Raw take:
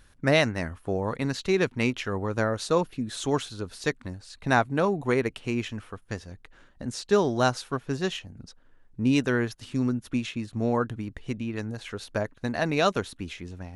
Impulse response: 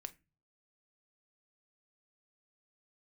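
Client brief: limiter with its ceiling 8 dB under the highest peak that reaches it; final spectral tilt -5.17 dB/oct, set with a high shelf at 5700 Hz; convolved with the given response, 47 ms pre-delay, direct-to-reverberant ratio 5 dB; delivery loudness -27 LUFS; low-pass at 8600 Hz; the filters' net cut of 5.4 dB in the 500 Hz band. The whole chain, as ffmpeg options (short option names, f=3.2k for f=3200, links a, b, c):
-filter_complex "[0:a]lowpass=8.6k,equalizer=f=500:t=o:g=-7,highshelf=f=5.7k:g=-7,alimiter=limit=-18dB:level=0:latency=1,asplit=2[a][b];[1:a]atrim=start_sample=2205,adelay=47[c];[b][c]afir=irnorm=-1:irlink=0,volume=-0.5dB[d];[a][d]amix=inputs=2:normalize=0,volume=4.5dB"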